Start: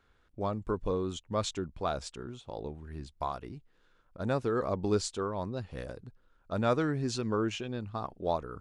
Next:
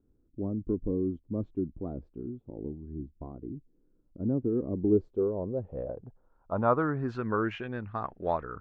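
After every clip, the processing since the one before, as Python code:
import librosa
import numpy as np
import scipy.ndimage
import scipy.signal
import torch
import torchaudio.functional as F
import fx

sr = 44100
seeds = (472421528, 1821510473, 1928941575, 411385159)

y = fx.filter_sweep_lowpass(x, sr, from_hz=300.0, to_hz=1800.0, start_s=4.73, end_s=7.46, q=2.6)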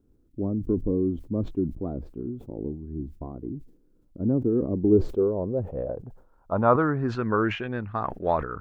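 y = fx.sustainer(x, sr, db_per_s=120.0)
y = y * 10.0 ** (5.0 / 20.0)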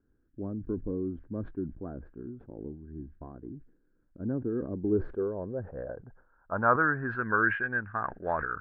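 y = fx.lowpass_res(x, sr, hz=1600.0, q=11.0)
y = y * 10.0 ** (-8.5 / 20.0)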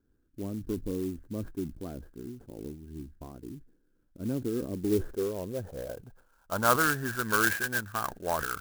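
y = fx.clock_jitter(x, sr, seeds[0], jitter_ms=0.053)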